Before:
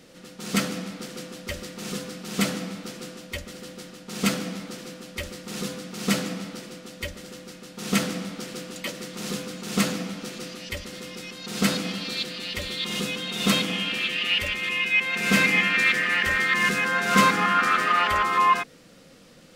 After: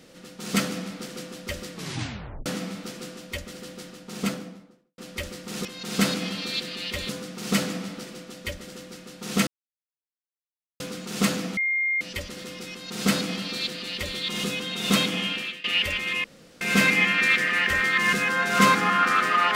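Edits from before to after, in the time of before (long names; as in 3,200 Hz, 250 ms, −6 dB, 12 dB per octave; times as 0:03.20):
0:01.72: tape stop 0.74 s
0:03.86–0:04.98: fade out and dull
0:08.03–0:09.36: silence
0:10.13–0:10.57: beep over 2,120 Hz −21.5 dBFS
0:11.28–0:12.72: duplicate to 0:05.65
0:13.84–0:14.20: fade out, to −20.5 dB
0:14.80–0:15.17: fill with room tone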